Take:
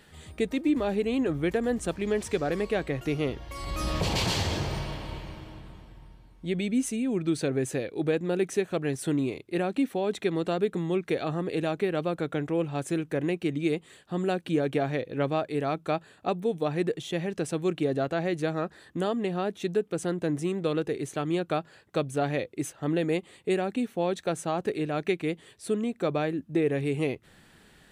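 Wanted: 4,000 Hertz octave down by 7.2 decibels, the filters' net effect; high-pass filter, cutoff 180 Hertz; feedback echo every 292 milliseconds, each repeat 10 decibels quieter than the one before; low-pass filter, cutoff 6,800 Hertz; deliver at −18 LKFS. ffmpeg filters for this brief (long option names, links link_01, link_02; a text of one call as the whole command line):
ffmpeg -i in.wav -af "highpass=180,lowpass=6800,equalizer=frequency=4000:width_type=o:gain=-9,aecho=1:1:292|584|876|1168:0.316|0.101|0.0324|0.0104,volume=12dB" out.wav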